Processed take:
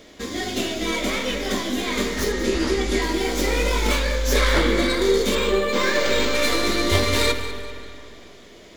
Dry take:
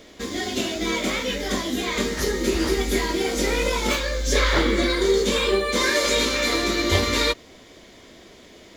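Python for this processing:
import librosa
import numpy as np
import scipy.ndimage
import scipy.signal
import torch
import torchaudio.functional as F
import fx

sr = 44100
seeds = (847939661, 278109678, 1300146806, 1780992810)

y = fx.tracing_dist(x, sr, depth_ms=0.058)
y = fx.lowpass(y, sr, hz=8600.0, slope=12, at=(2.32, 3.02))
y = fx.echo_feedback(y, sr, ms=196, feedback_pct=37, wet_db=-14)
y = fx.rev_spring(y, sr, rt60_s=2.5, pass_ms=(44, 59), chirp_ms=25, drr_db=8.0)
y = fx.resample_linear(y, sr, factor=4, at=(5.35, 6.35))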